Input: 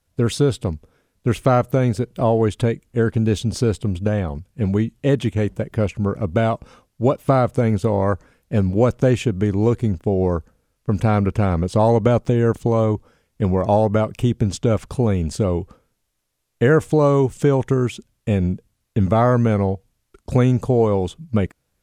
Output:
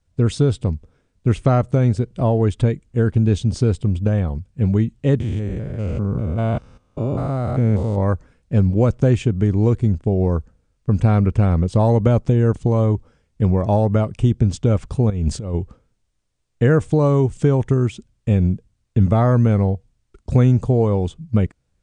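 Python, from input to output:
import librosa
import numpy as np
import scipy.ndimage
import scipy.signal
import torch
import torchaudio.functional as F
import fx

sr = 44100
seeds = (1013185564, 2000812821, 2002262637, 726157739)

y = fx.spec_steps(x, sr, hold_ms=200, at=(5.2, 7.98))
y = fx.over_compress(y, sr, threshold_db=-23.0, ratio=-0.5, at=(15.1, 15.55))
y = scipy.signal.sosfilt(scipy.signal.butter(12, 9500.0, 'lowpass', fs=sr, output='sos'), y)
y = fx.low_shelf(y, sr, hz=200.0, db=10.5)
y = y * 10.0 ** (-4.0 / 20.0)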